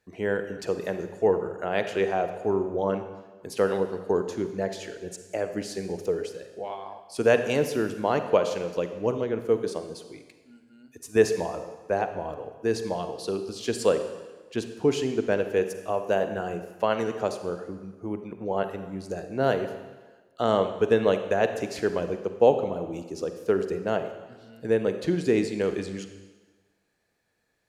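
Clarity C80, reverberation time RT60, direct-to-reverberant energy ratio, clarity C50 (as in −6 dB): 10.5 dB, 1.3 s, 8.0 dB, 8.5 dB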